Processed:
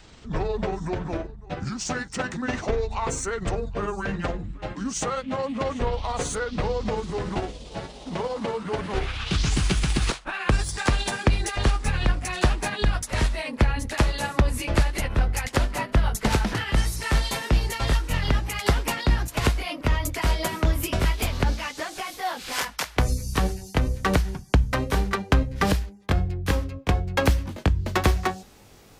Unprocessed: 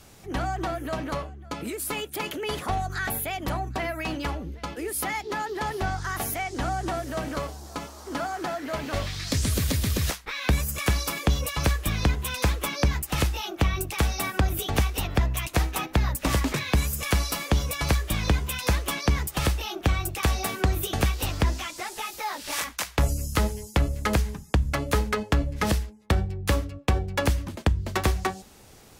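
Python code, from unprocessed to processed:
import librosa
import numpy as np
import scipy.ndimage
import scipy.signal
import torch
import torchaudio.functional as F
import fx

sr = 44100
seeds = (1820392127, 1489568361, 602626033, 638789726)

y = fx.pitch_glide(x, sr, semitones=-10.0, runs='ending unshifted')
y = fx.peak_eq(y, sr, hz=9800.0, db=-4.5, octaves=1.3)
y = y * 10.0 ** (3.5 / 20.0)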